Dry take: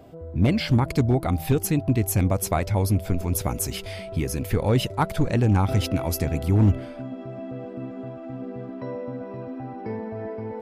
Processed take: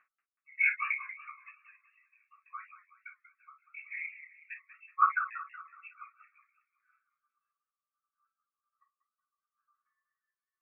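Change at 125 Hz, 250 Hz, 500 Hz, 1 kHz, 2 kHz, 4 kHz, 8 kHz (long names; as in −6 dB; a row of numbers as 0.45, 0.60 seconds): below −40 dB, below −40 dB, below −40 dB, −4.5 dB, +2.0 dB, below −30 dB, below −40 dB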